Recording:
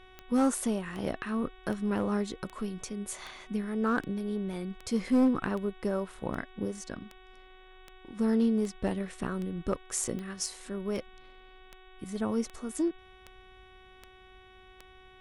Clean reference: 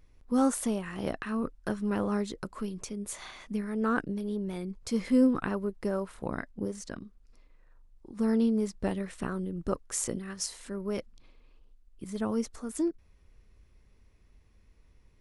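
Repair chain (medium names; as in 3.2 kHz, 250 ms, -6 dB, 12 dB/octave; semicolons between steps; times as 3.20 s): clip repair -19 dBFS; de-click; de-hum 373.1 Hz, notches 10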